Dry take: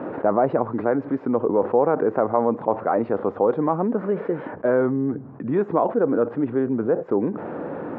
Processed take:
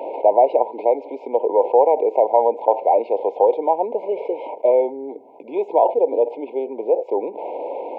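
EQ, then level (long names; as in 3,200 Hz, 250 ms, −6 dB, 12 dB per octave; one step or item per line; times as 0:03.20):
high-pass filter 480 Hz 24 dB per octave
linear-phase brick-wall band-stop 1,000–2,100 Hz
+7.0 dB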